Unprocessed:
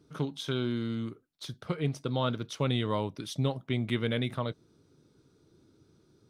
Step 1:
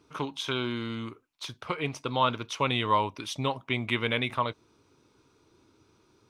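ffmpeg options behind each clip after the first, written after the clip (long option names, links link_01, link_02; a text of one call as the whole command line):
ffmpeg -i in.wav -af "equalizer=frequency=160:width_type=o:width=0.67:gain=-8,equalizer=frequency=1000:width_type=o:width=0.67:gain=12,equalizer=frequency=2500:width_type=o:width=0.67:gain=11,equalizer=frequency=6300:width_type=o:width=0.67:gain=4" out.wav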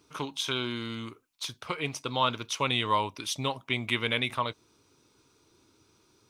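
ffmpeg -i in.wav -af "highshelf=frequency=3800:gain=11,volume=-2.5dB" out.wav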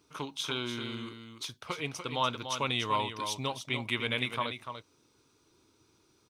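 ffmpeg -i in.wav -af "aecho=1:1:292:0.398,volume=-3.5dB" out.wav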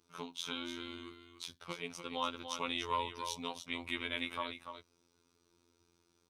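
ffmpeg -i in.wav -af "afftfilt=real='hypot(re,im)*cos(PI*b)':imag='0':win_size=2048:overlap=0.75,volume=-3dB" out.wav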